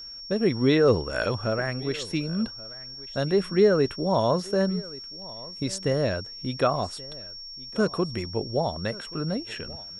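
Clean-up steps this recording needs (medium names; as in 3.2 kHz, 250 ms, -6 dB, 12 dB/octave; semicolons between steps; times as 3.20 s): de-click; band-stop 5.5 kHz, Q 30; inverse comb 1130 ms -20.5 dB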